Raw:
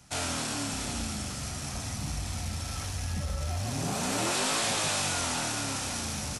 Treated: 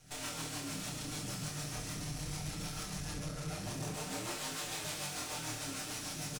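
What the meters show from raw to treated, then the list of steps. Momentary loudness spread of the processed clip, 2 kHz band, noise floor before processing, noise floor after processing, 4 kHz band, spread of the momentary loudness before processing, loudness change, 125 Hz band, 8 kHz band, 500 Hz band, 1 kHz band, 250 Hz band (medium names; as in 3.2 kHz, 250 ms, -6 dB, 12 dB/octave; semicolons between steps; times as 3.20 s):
2 LU, -9.0 dB, -37 dBFS, -44 dBFS, -8.5 dB, 8 LU, -8.5 dB, -8.0 dB, -9.0 dB, -9.0 dB, -10.5 dB, -7.5 dB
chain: comb filter that takes the minimum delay 6.6 ms; peak limiter -29 dBFS, peak gain reduction 8 dB; saturation -36.5 dBFS, distortion -14 dB; rotary cabinet horn 6.7 Hz; on a send: early reflections 26 ms -3.5 dB, 68 ms -7.5 dB; on the sum: trim +1 dB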